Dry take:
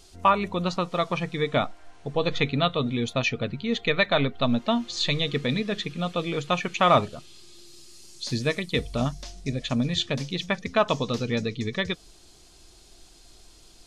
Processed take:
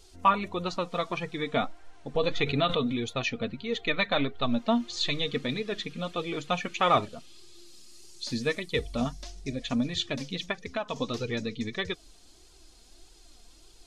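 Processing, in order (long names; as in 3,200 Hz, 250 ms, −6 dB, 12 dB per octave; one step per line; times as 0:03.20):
0:10.51–0:10.96: downward compressor 4 to 1, threshold −26 dBFS, peak gain reduction 9.5 dB
flanger 1.6 Hz, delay 2 ms, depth 2.5 ms, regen +25%
0:02.15–0:03.05: background raised ahead of every attack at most 54 dB per second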